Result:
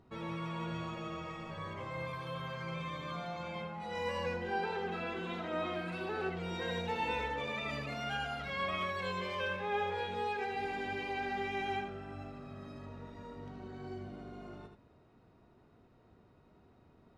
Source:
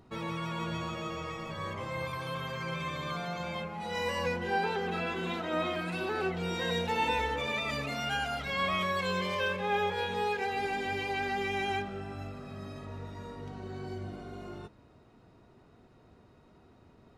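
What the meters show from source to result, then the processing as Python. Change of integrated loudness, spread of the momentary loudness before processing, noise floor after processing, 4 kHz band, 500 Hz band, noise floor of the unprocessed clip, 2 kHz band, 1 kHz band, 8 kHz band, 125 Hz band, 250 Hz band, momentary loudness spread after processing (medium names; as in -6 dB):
-5.0 dB, 13 LU, -64 dBFS, -7.0 dB, -4.5 dB, -60 dBFS, -5.5 dB, -4.5 dB, -10.0 dB, -4.5 dB, -4.5 dB, 13 LU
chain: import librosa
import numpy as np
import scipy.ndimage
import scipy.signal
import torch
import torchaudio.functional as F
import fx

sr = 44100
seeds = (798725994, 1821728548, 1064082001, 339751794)

p1 = fx.lowpass(x, sr, hz=3800.0, slope=6)
p2 = p1 + fx.echo_single(p1, sr, ms=78, db=-7.5, dry=0)
y = p2 * librosa.db_to_amplitude(-5.0)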